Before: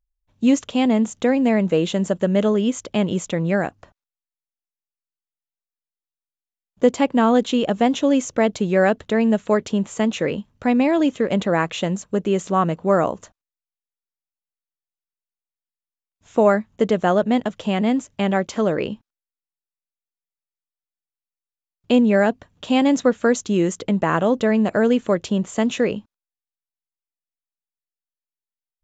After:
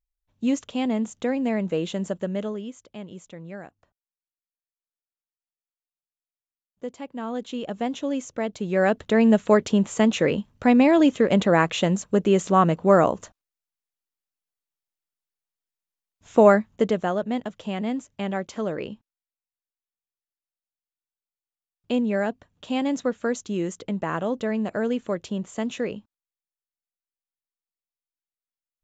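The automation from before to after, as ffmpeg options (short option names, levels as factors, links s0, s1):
-af "volume=3.98,afade=t=out:st=2.09:d=0.67:silence=0.281838,afade=t=in:st=7.09:d=0.74:silence=0.375837,afade=t=in:st=8.55:d=0.72:silence=0.298538,afade=t=out:st=16.5:d=0.62:silence=0.354813"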